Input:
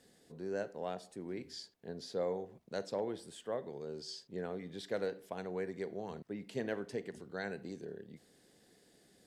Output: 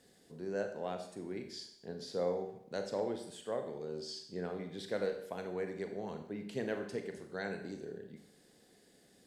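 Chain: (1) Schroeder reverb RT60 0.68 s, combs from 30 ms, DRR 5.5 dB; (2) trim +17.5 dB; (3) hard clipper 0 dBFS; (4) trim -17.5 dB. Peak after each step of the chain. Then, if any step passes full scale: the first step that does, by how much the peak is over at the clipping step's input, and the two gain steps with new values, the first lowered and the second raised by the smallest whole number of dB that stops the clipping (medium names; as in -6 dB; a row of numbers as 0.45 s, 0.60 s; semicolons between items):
-23.0 dBFS, -5.5 dBFS, -5.5 dBFS, -23.0 dBFS; nothing clips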